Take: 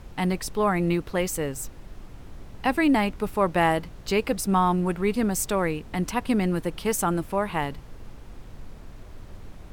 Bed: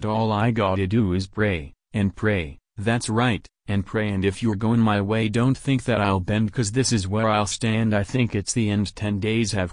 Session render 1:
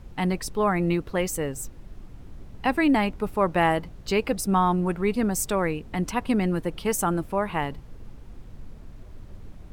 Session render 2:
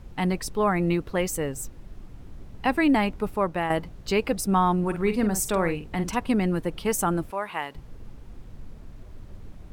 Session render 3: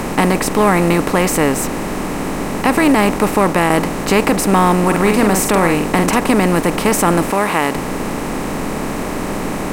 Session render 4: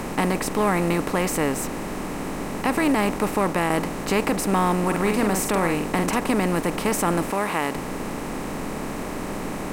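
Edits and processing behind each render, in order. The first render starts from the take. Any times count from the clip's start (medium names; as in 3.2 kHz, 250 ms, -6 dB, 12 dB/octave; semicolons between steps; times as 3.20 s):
noise reduction 6 dB, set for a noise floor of -44 dBFS
3.27–3.70 s: fade out linear, to -8.5 dB; 4.79–6.17 s: doubling 47 ms -9.5 dB; 7.31–7.75 s: high-pass 920 Hz 6 dB/octave
spectral levelling over time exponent 0.4; loudness maximiser +6 dB
trim -8.5 dB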